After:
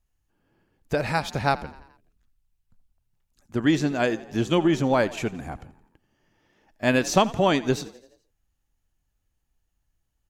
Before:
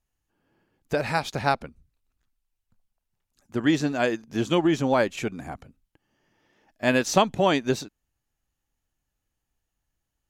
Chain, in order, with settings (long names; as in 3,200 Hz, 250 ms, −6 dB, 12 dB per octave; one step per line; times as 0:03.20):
low-shelf EQ 92 Hz +9 dB
echo with shifted repeats 85 ms, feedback 56%, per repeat +36 Hz, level −19 dB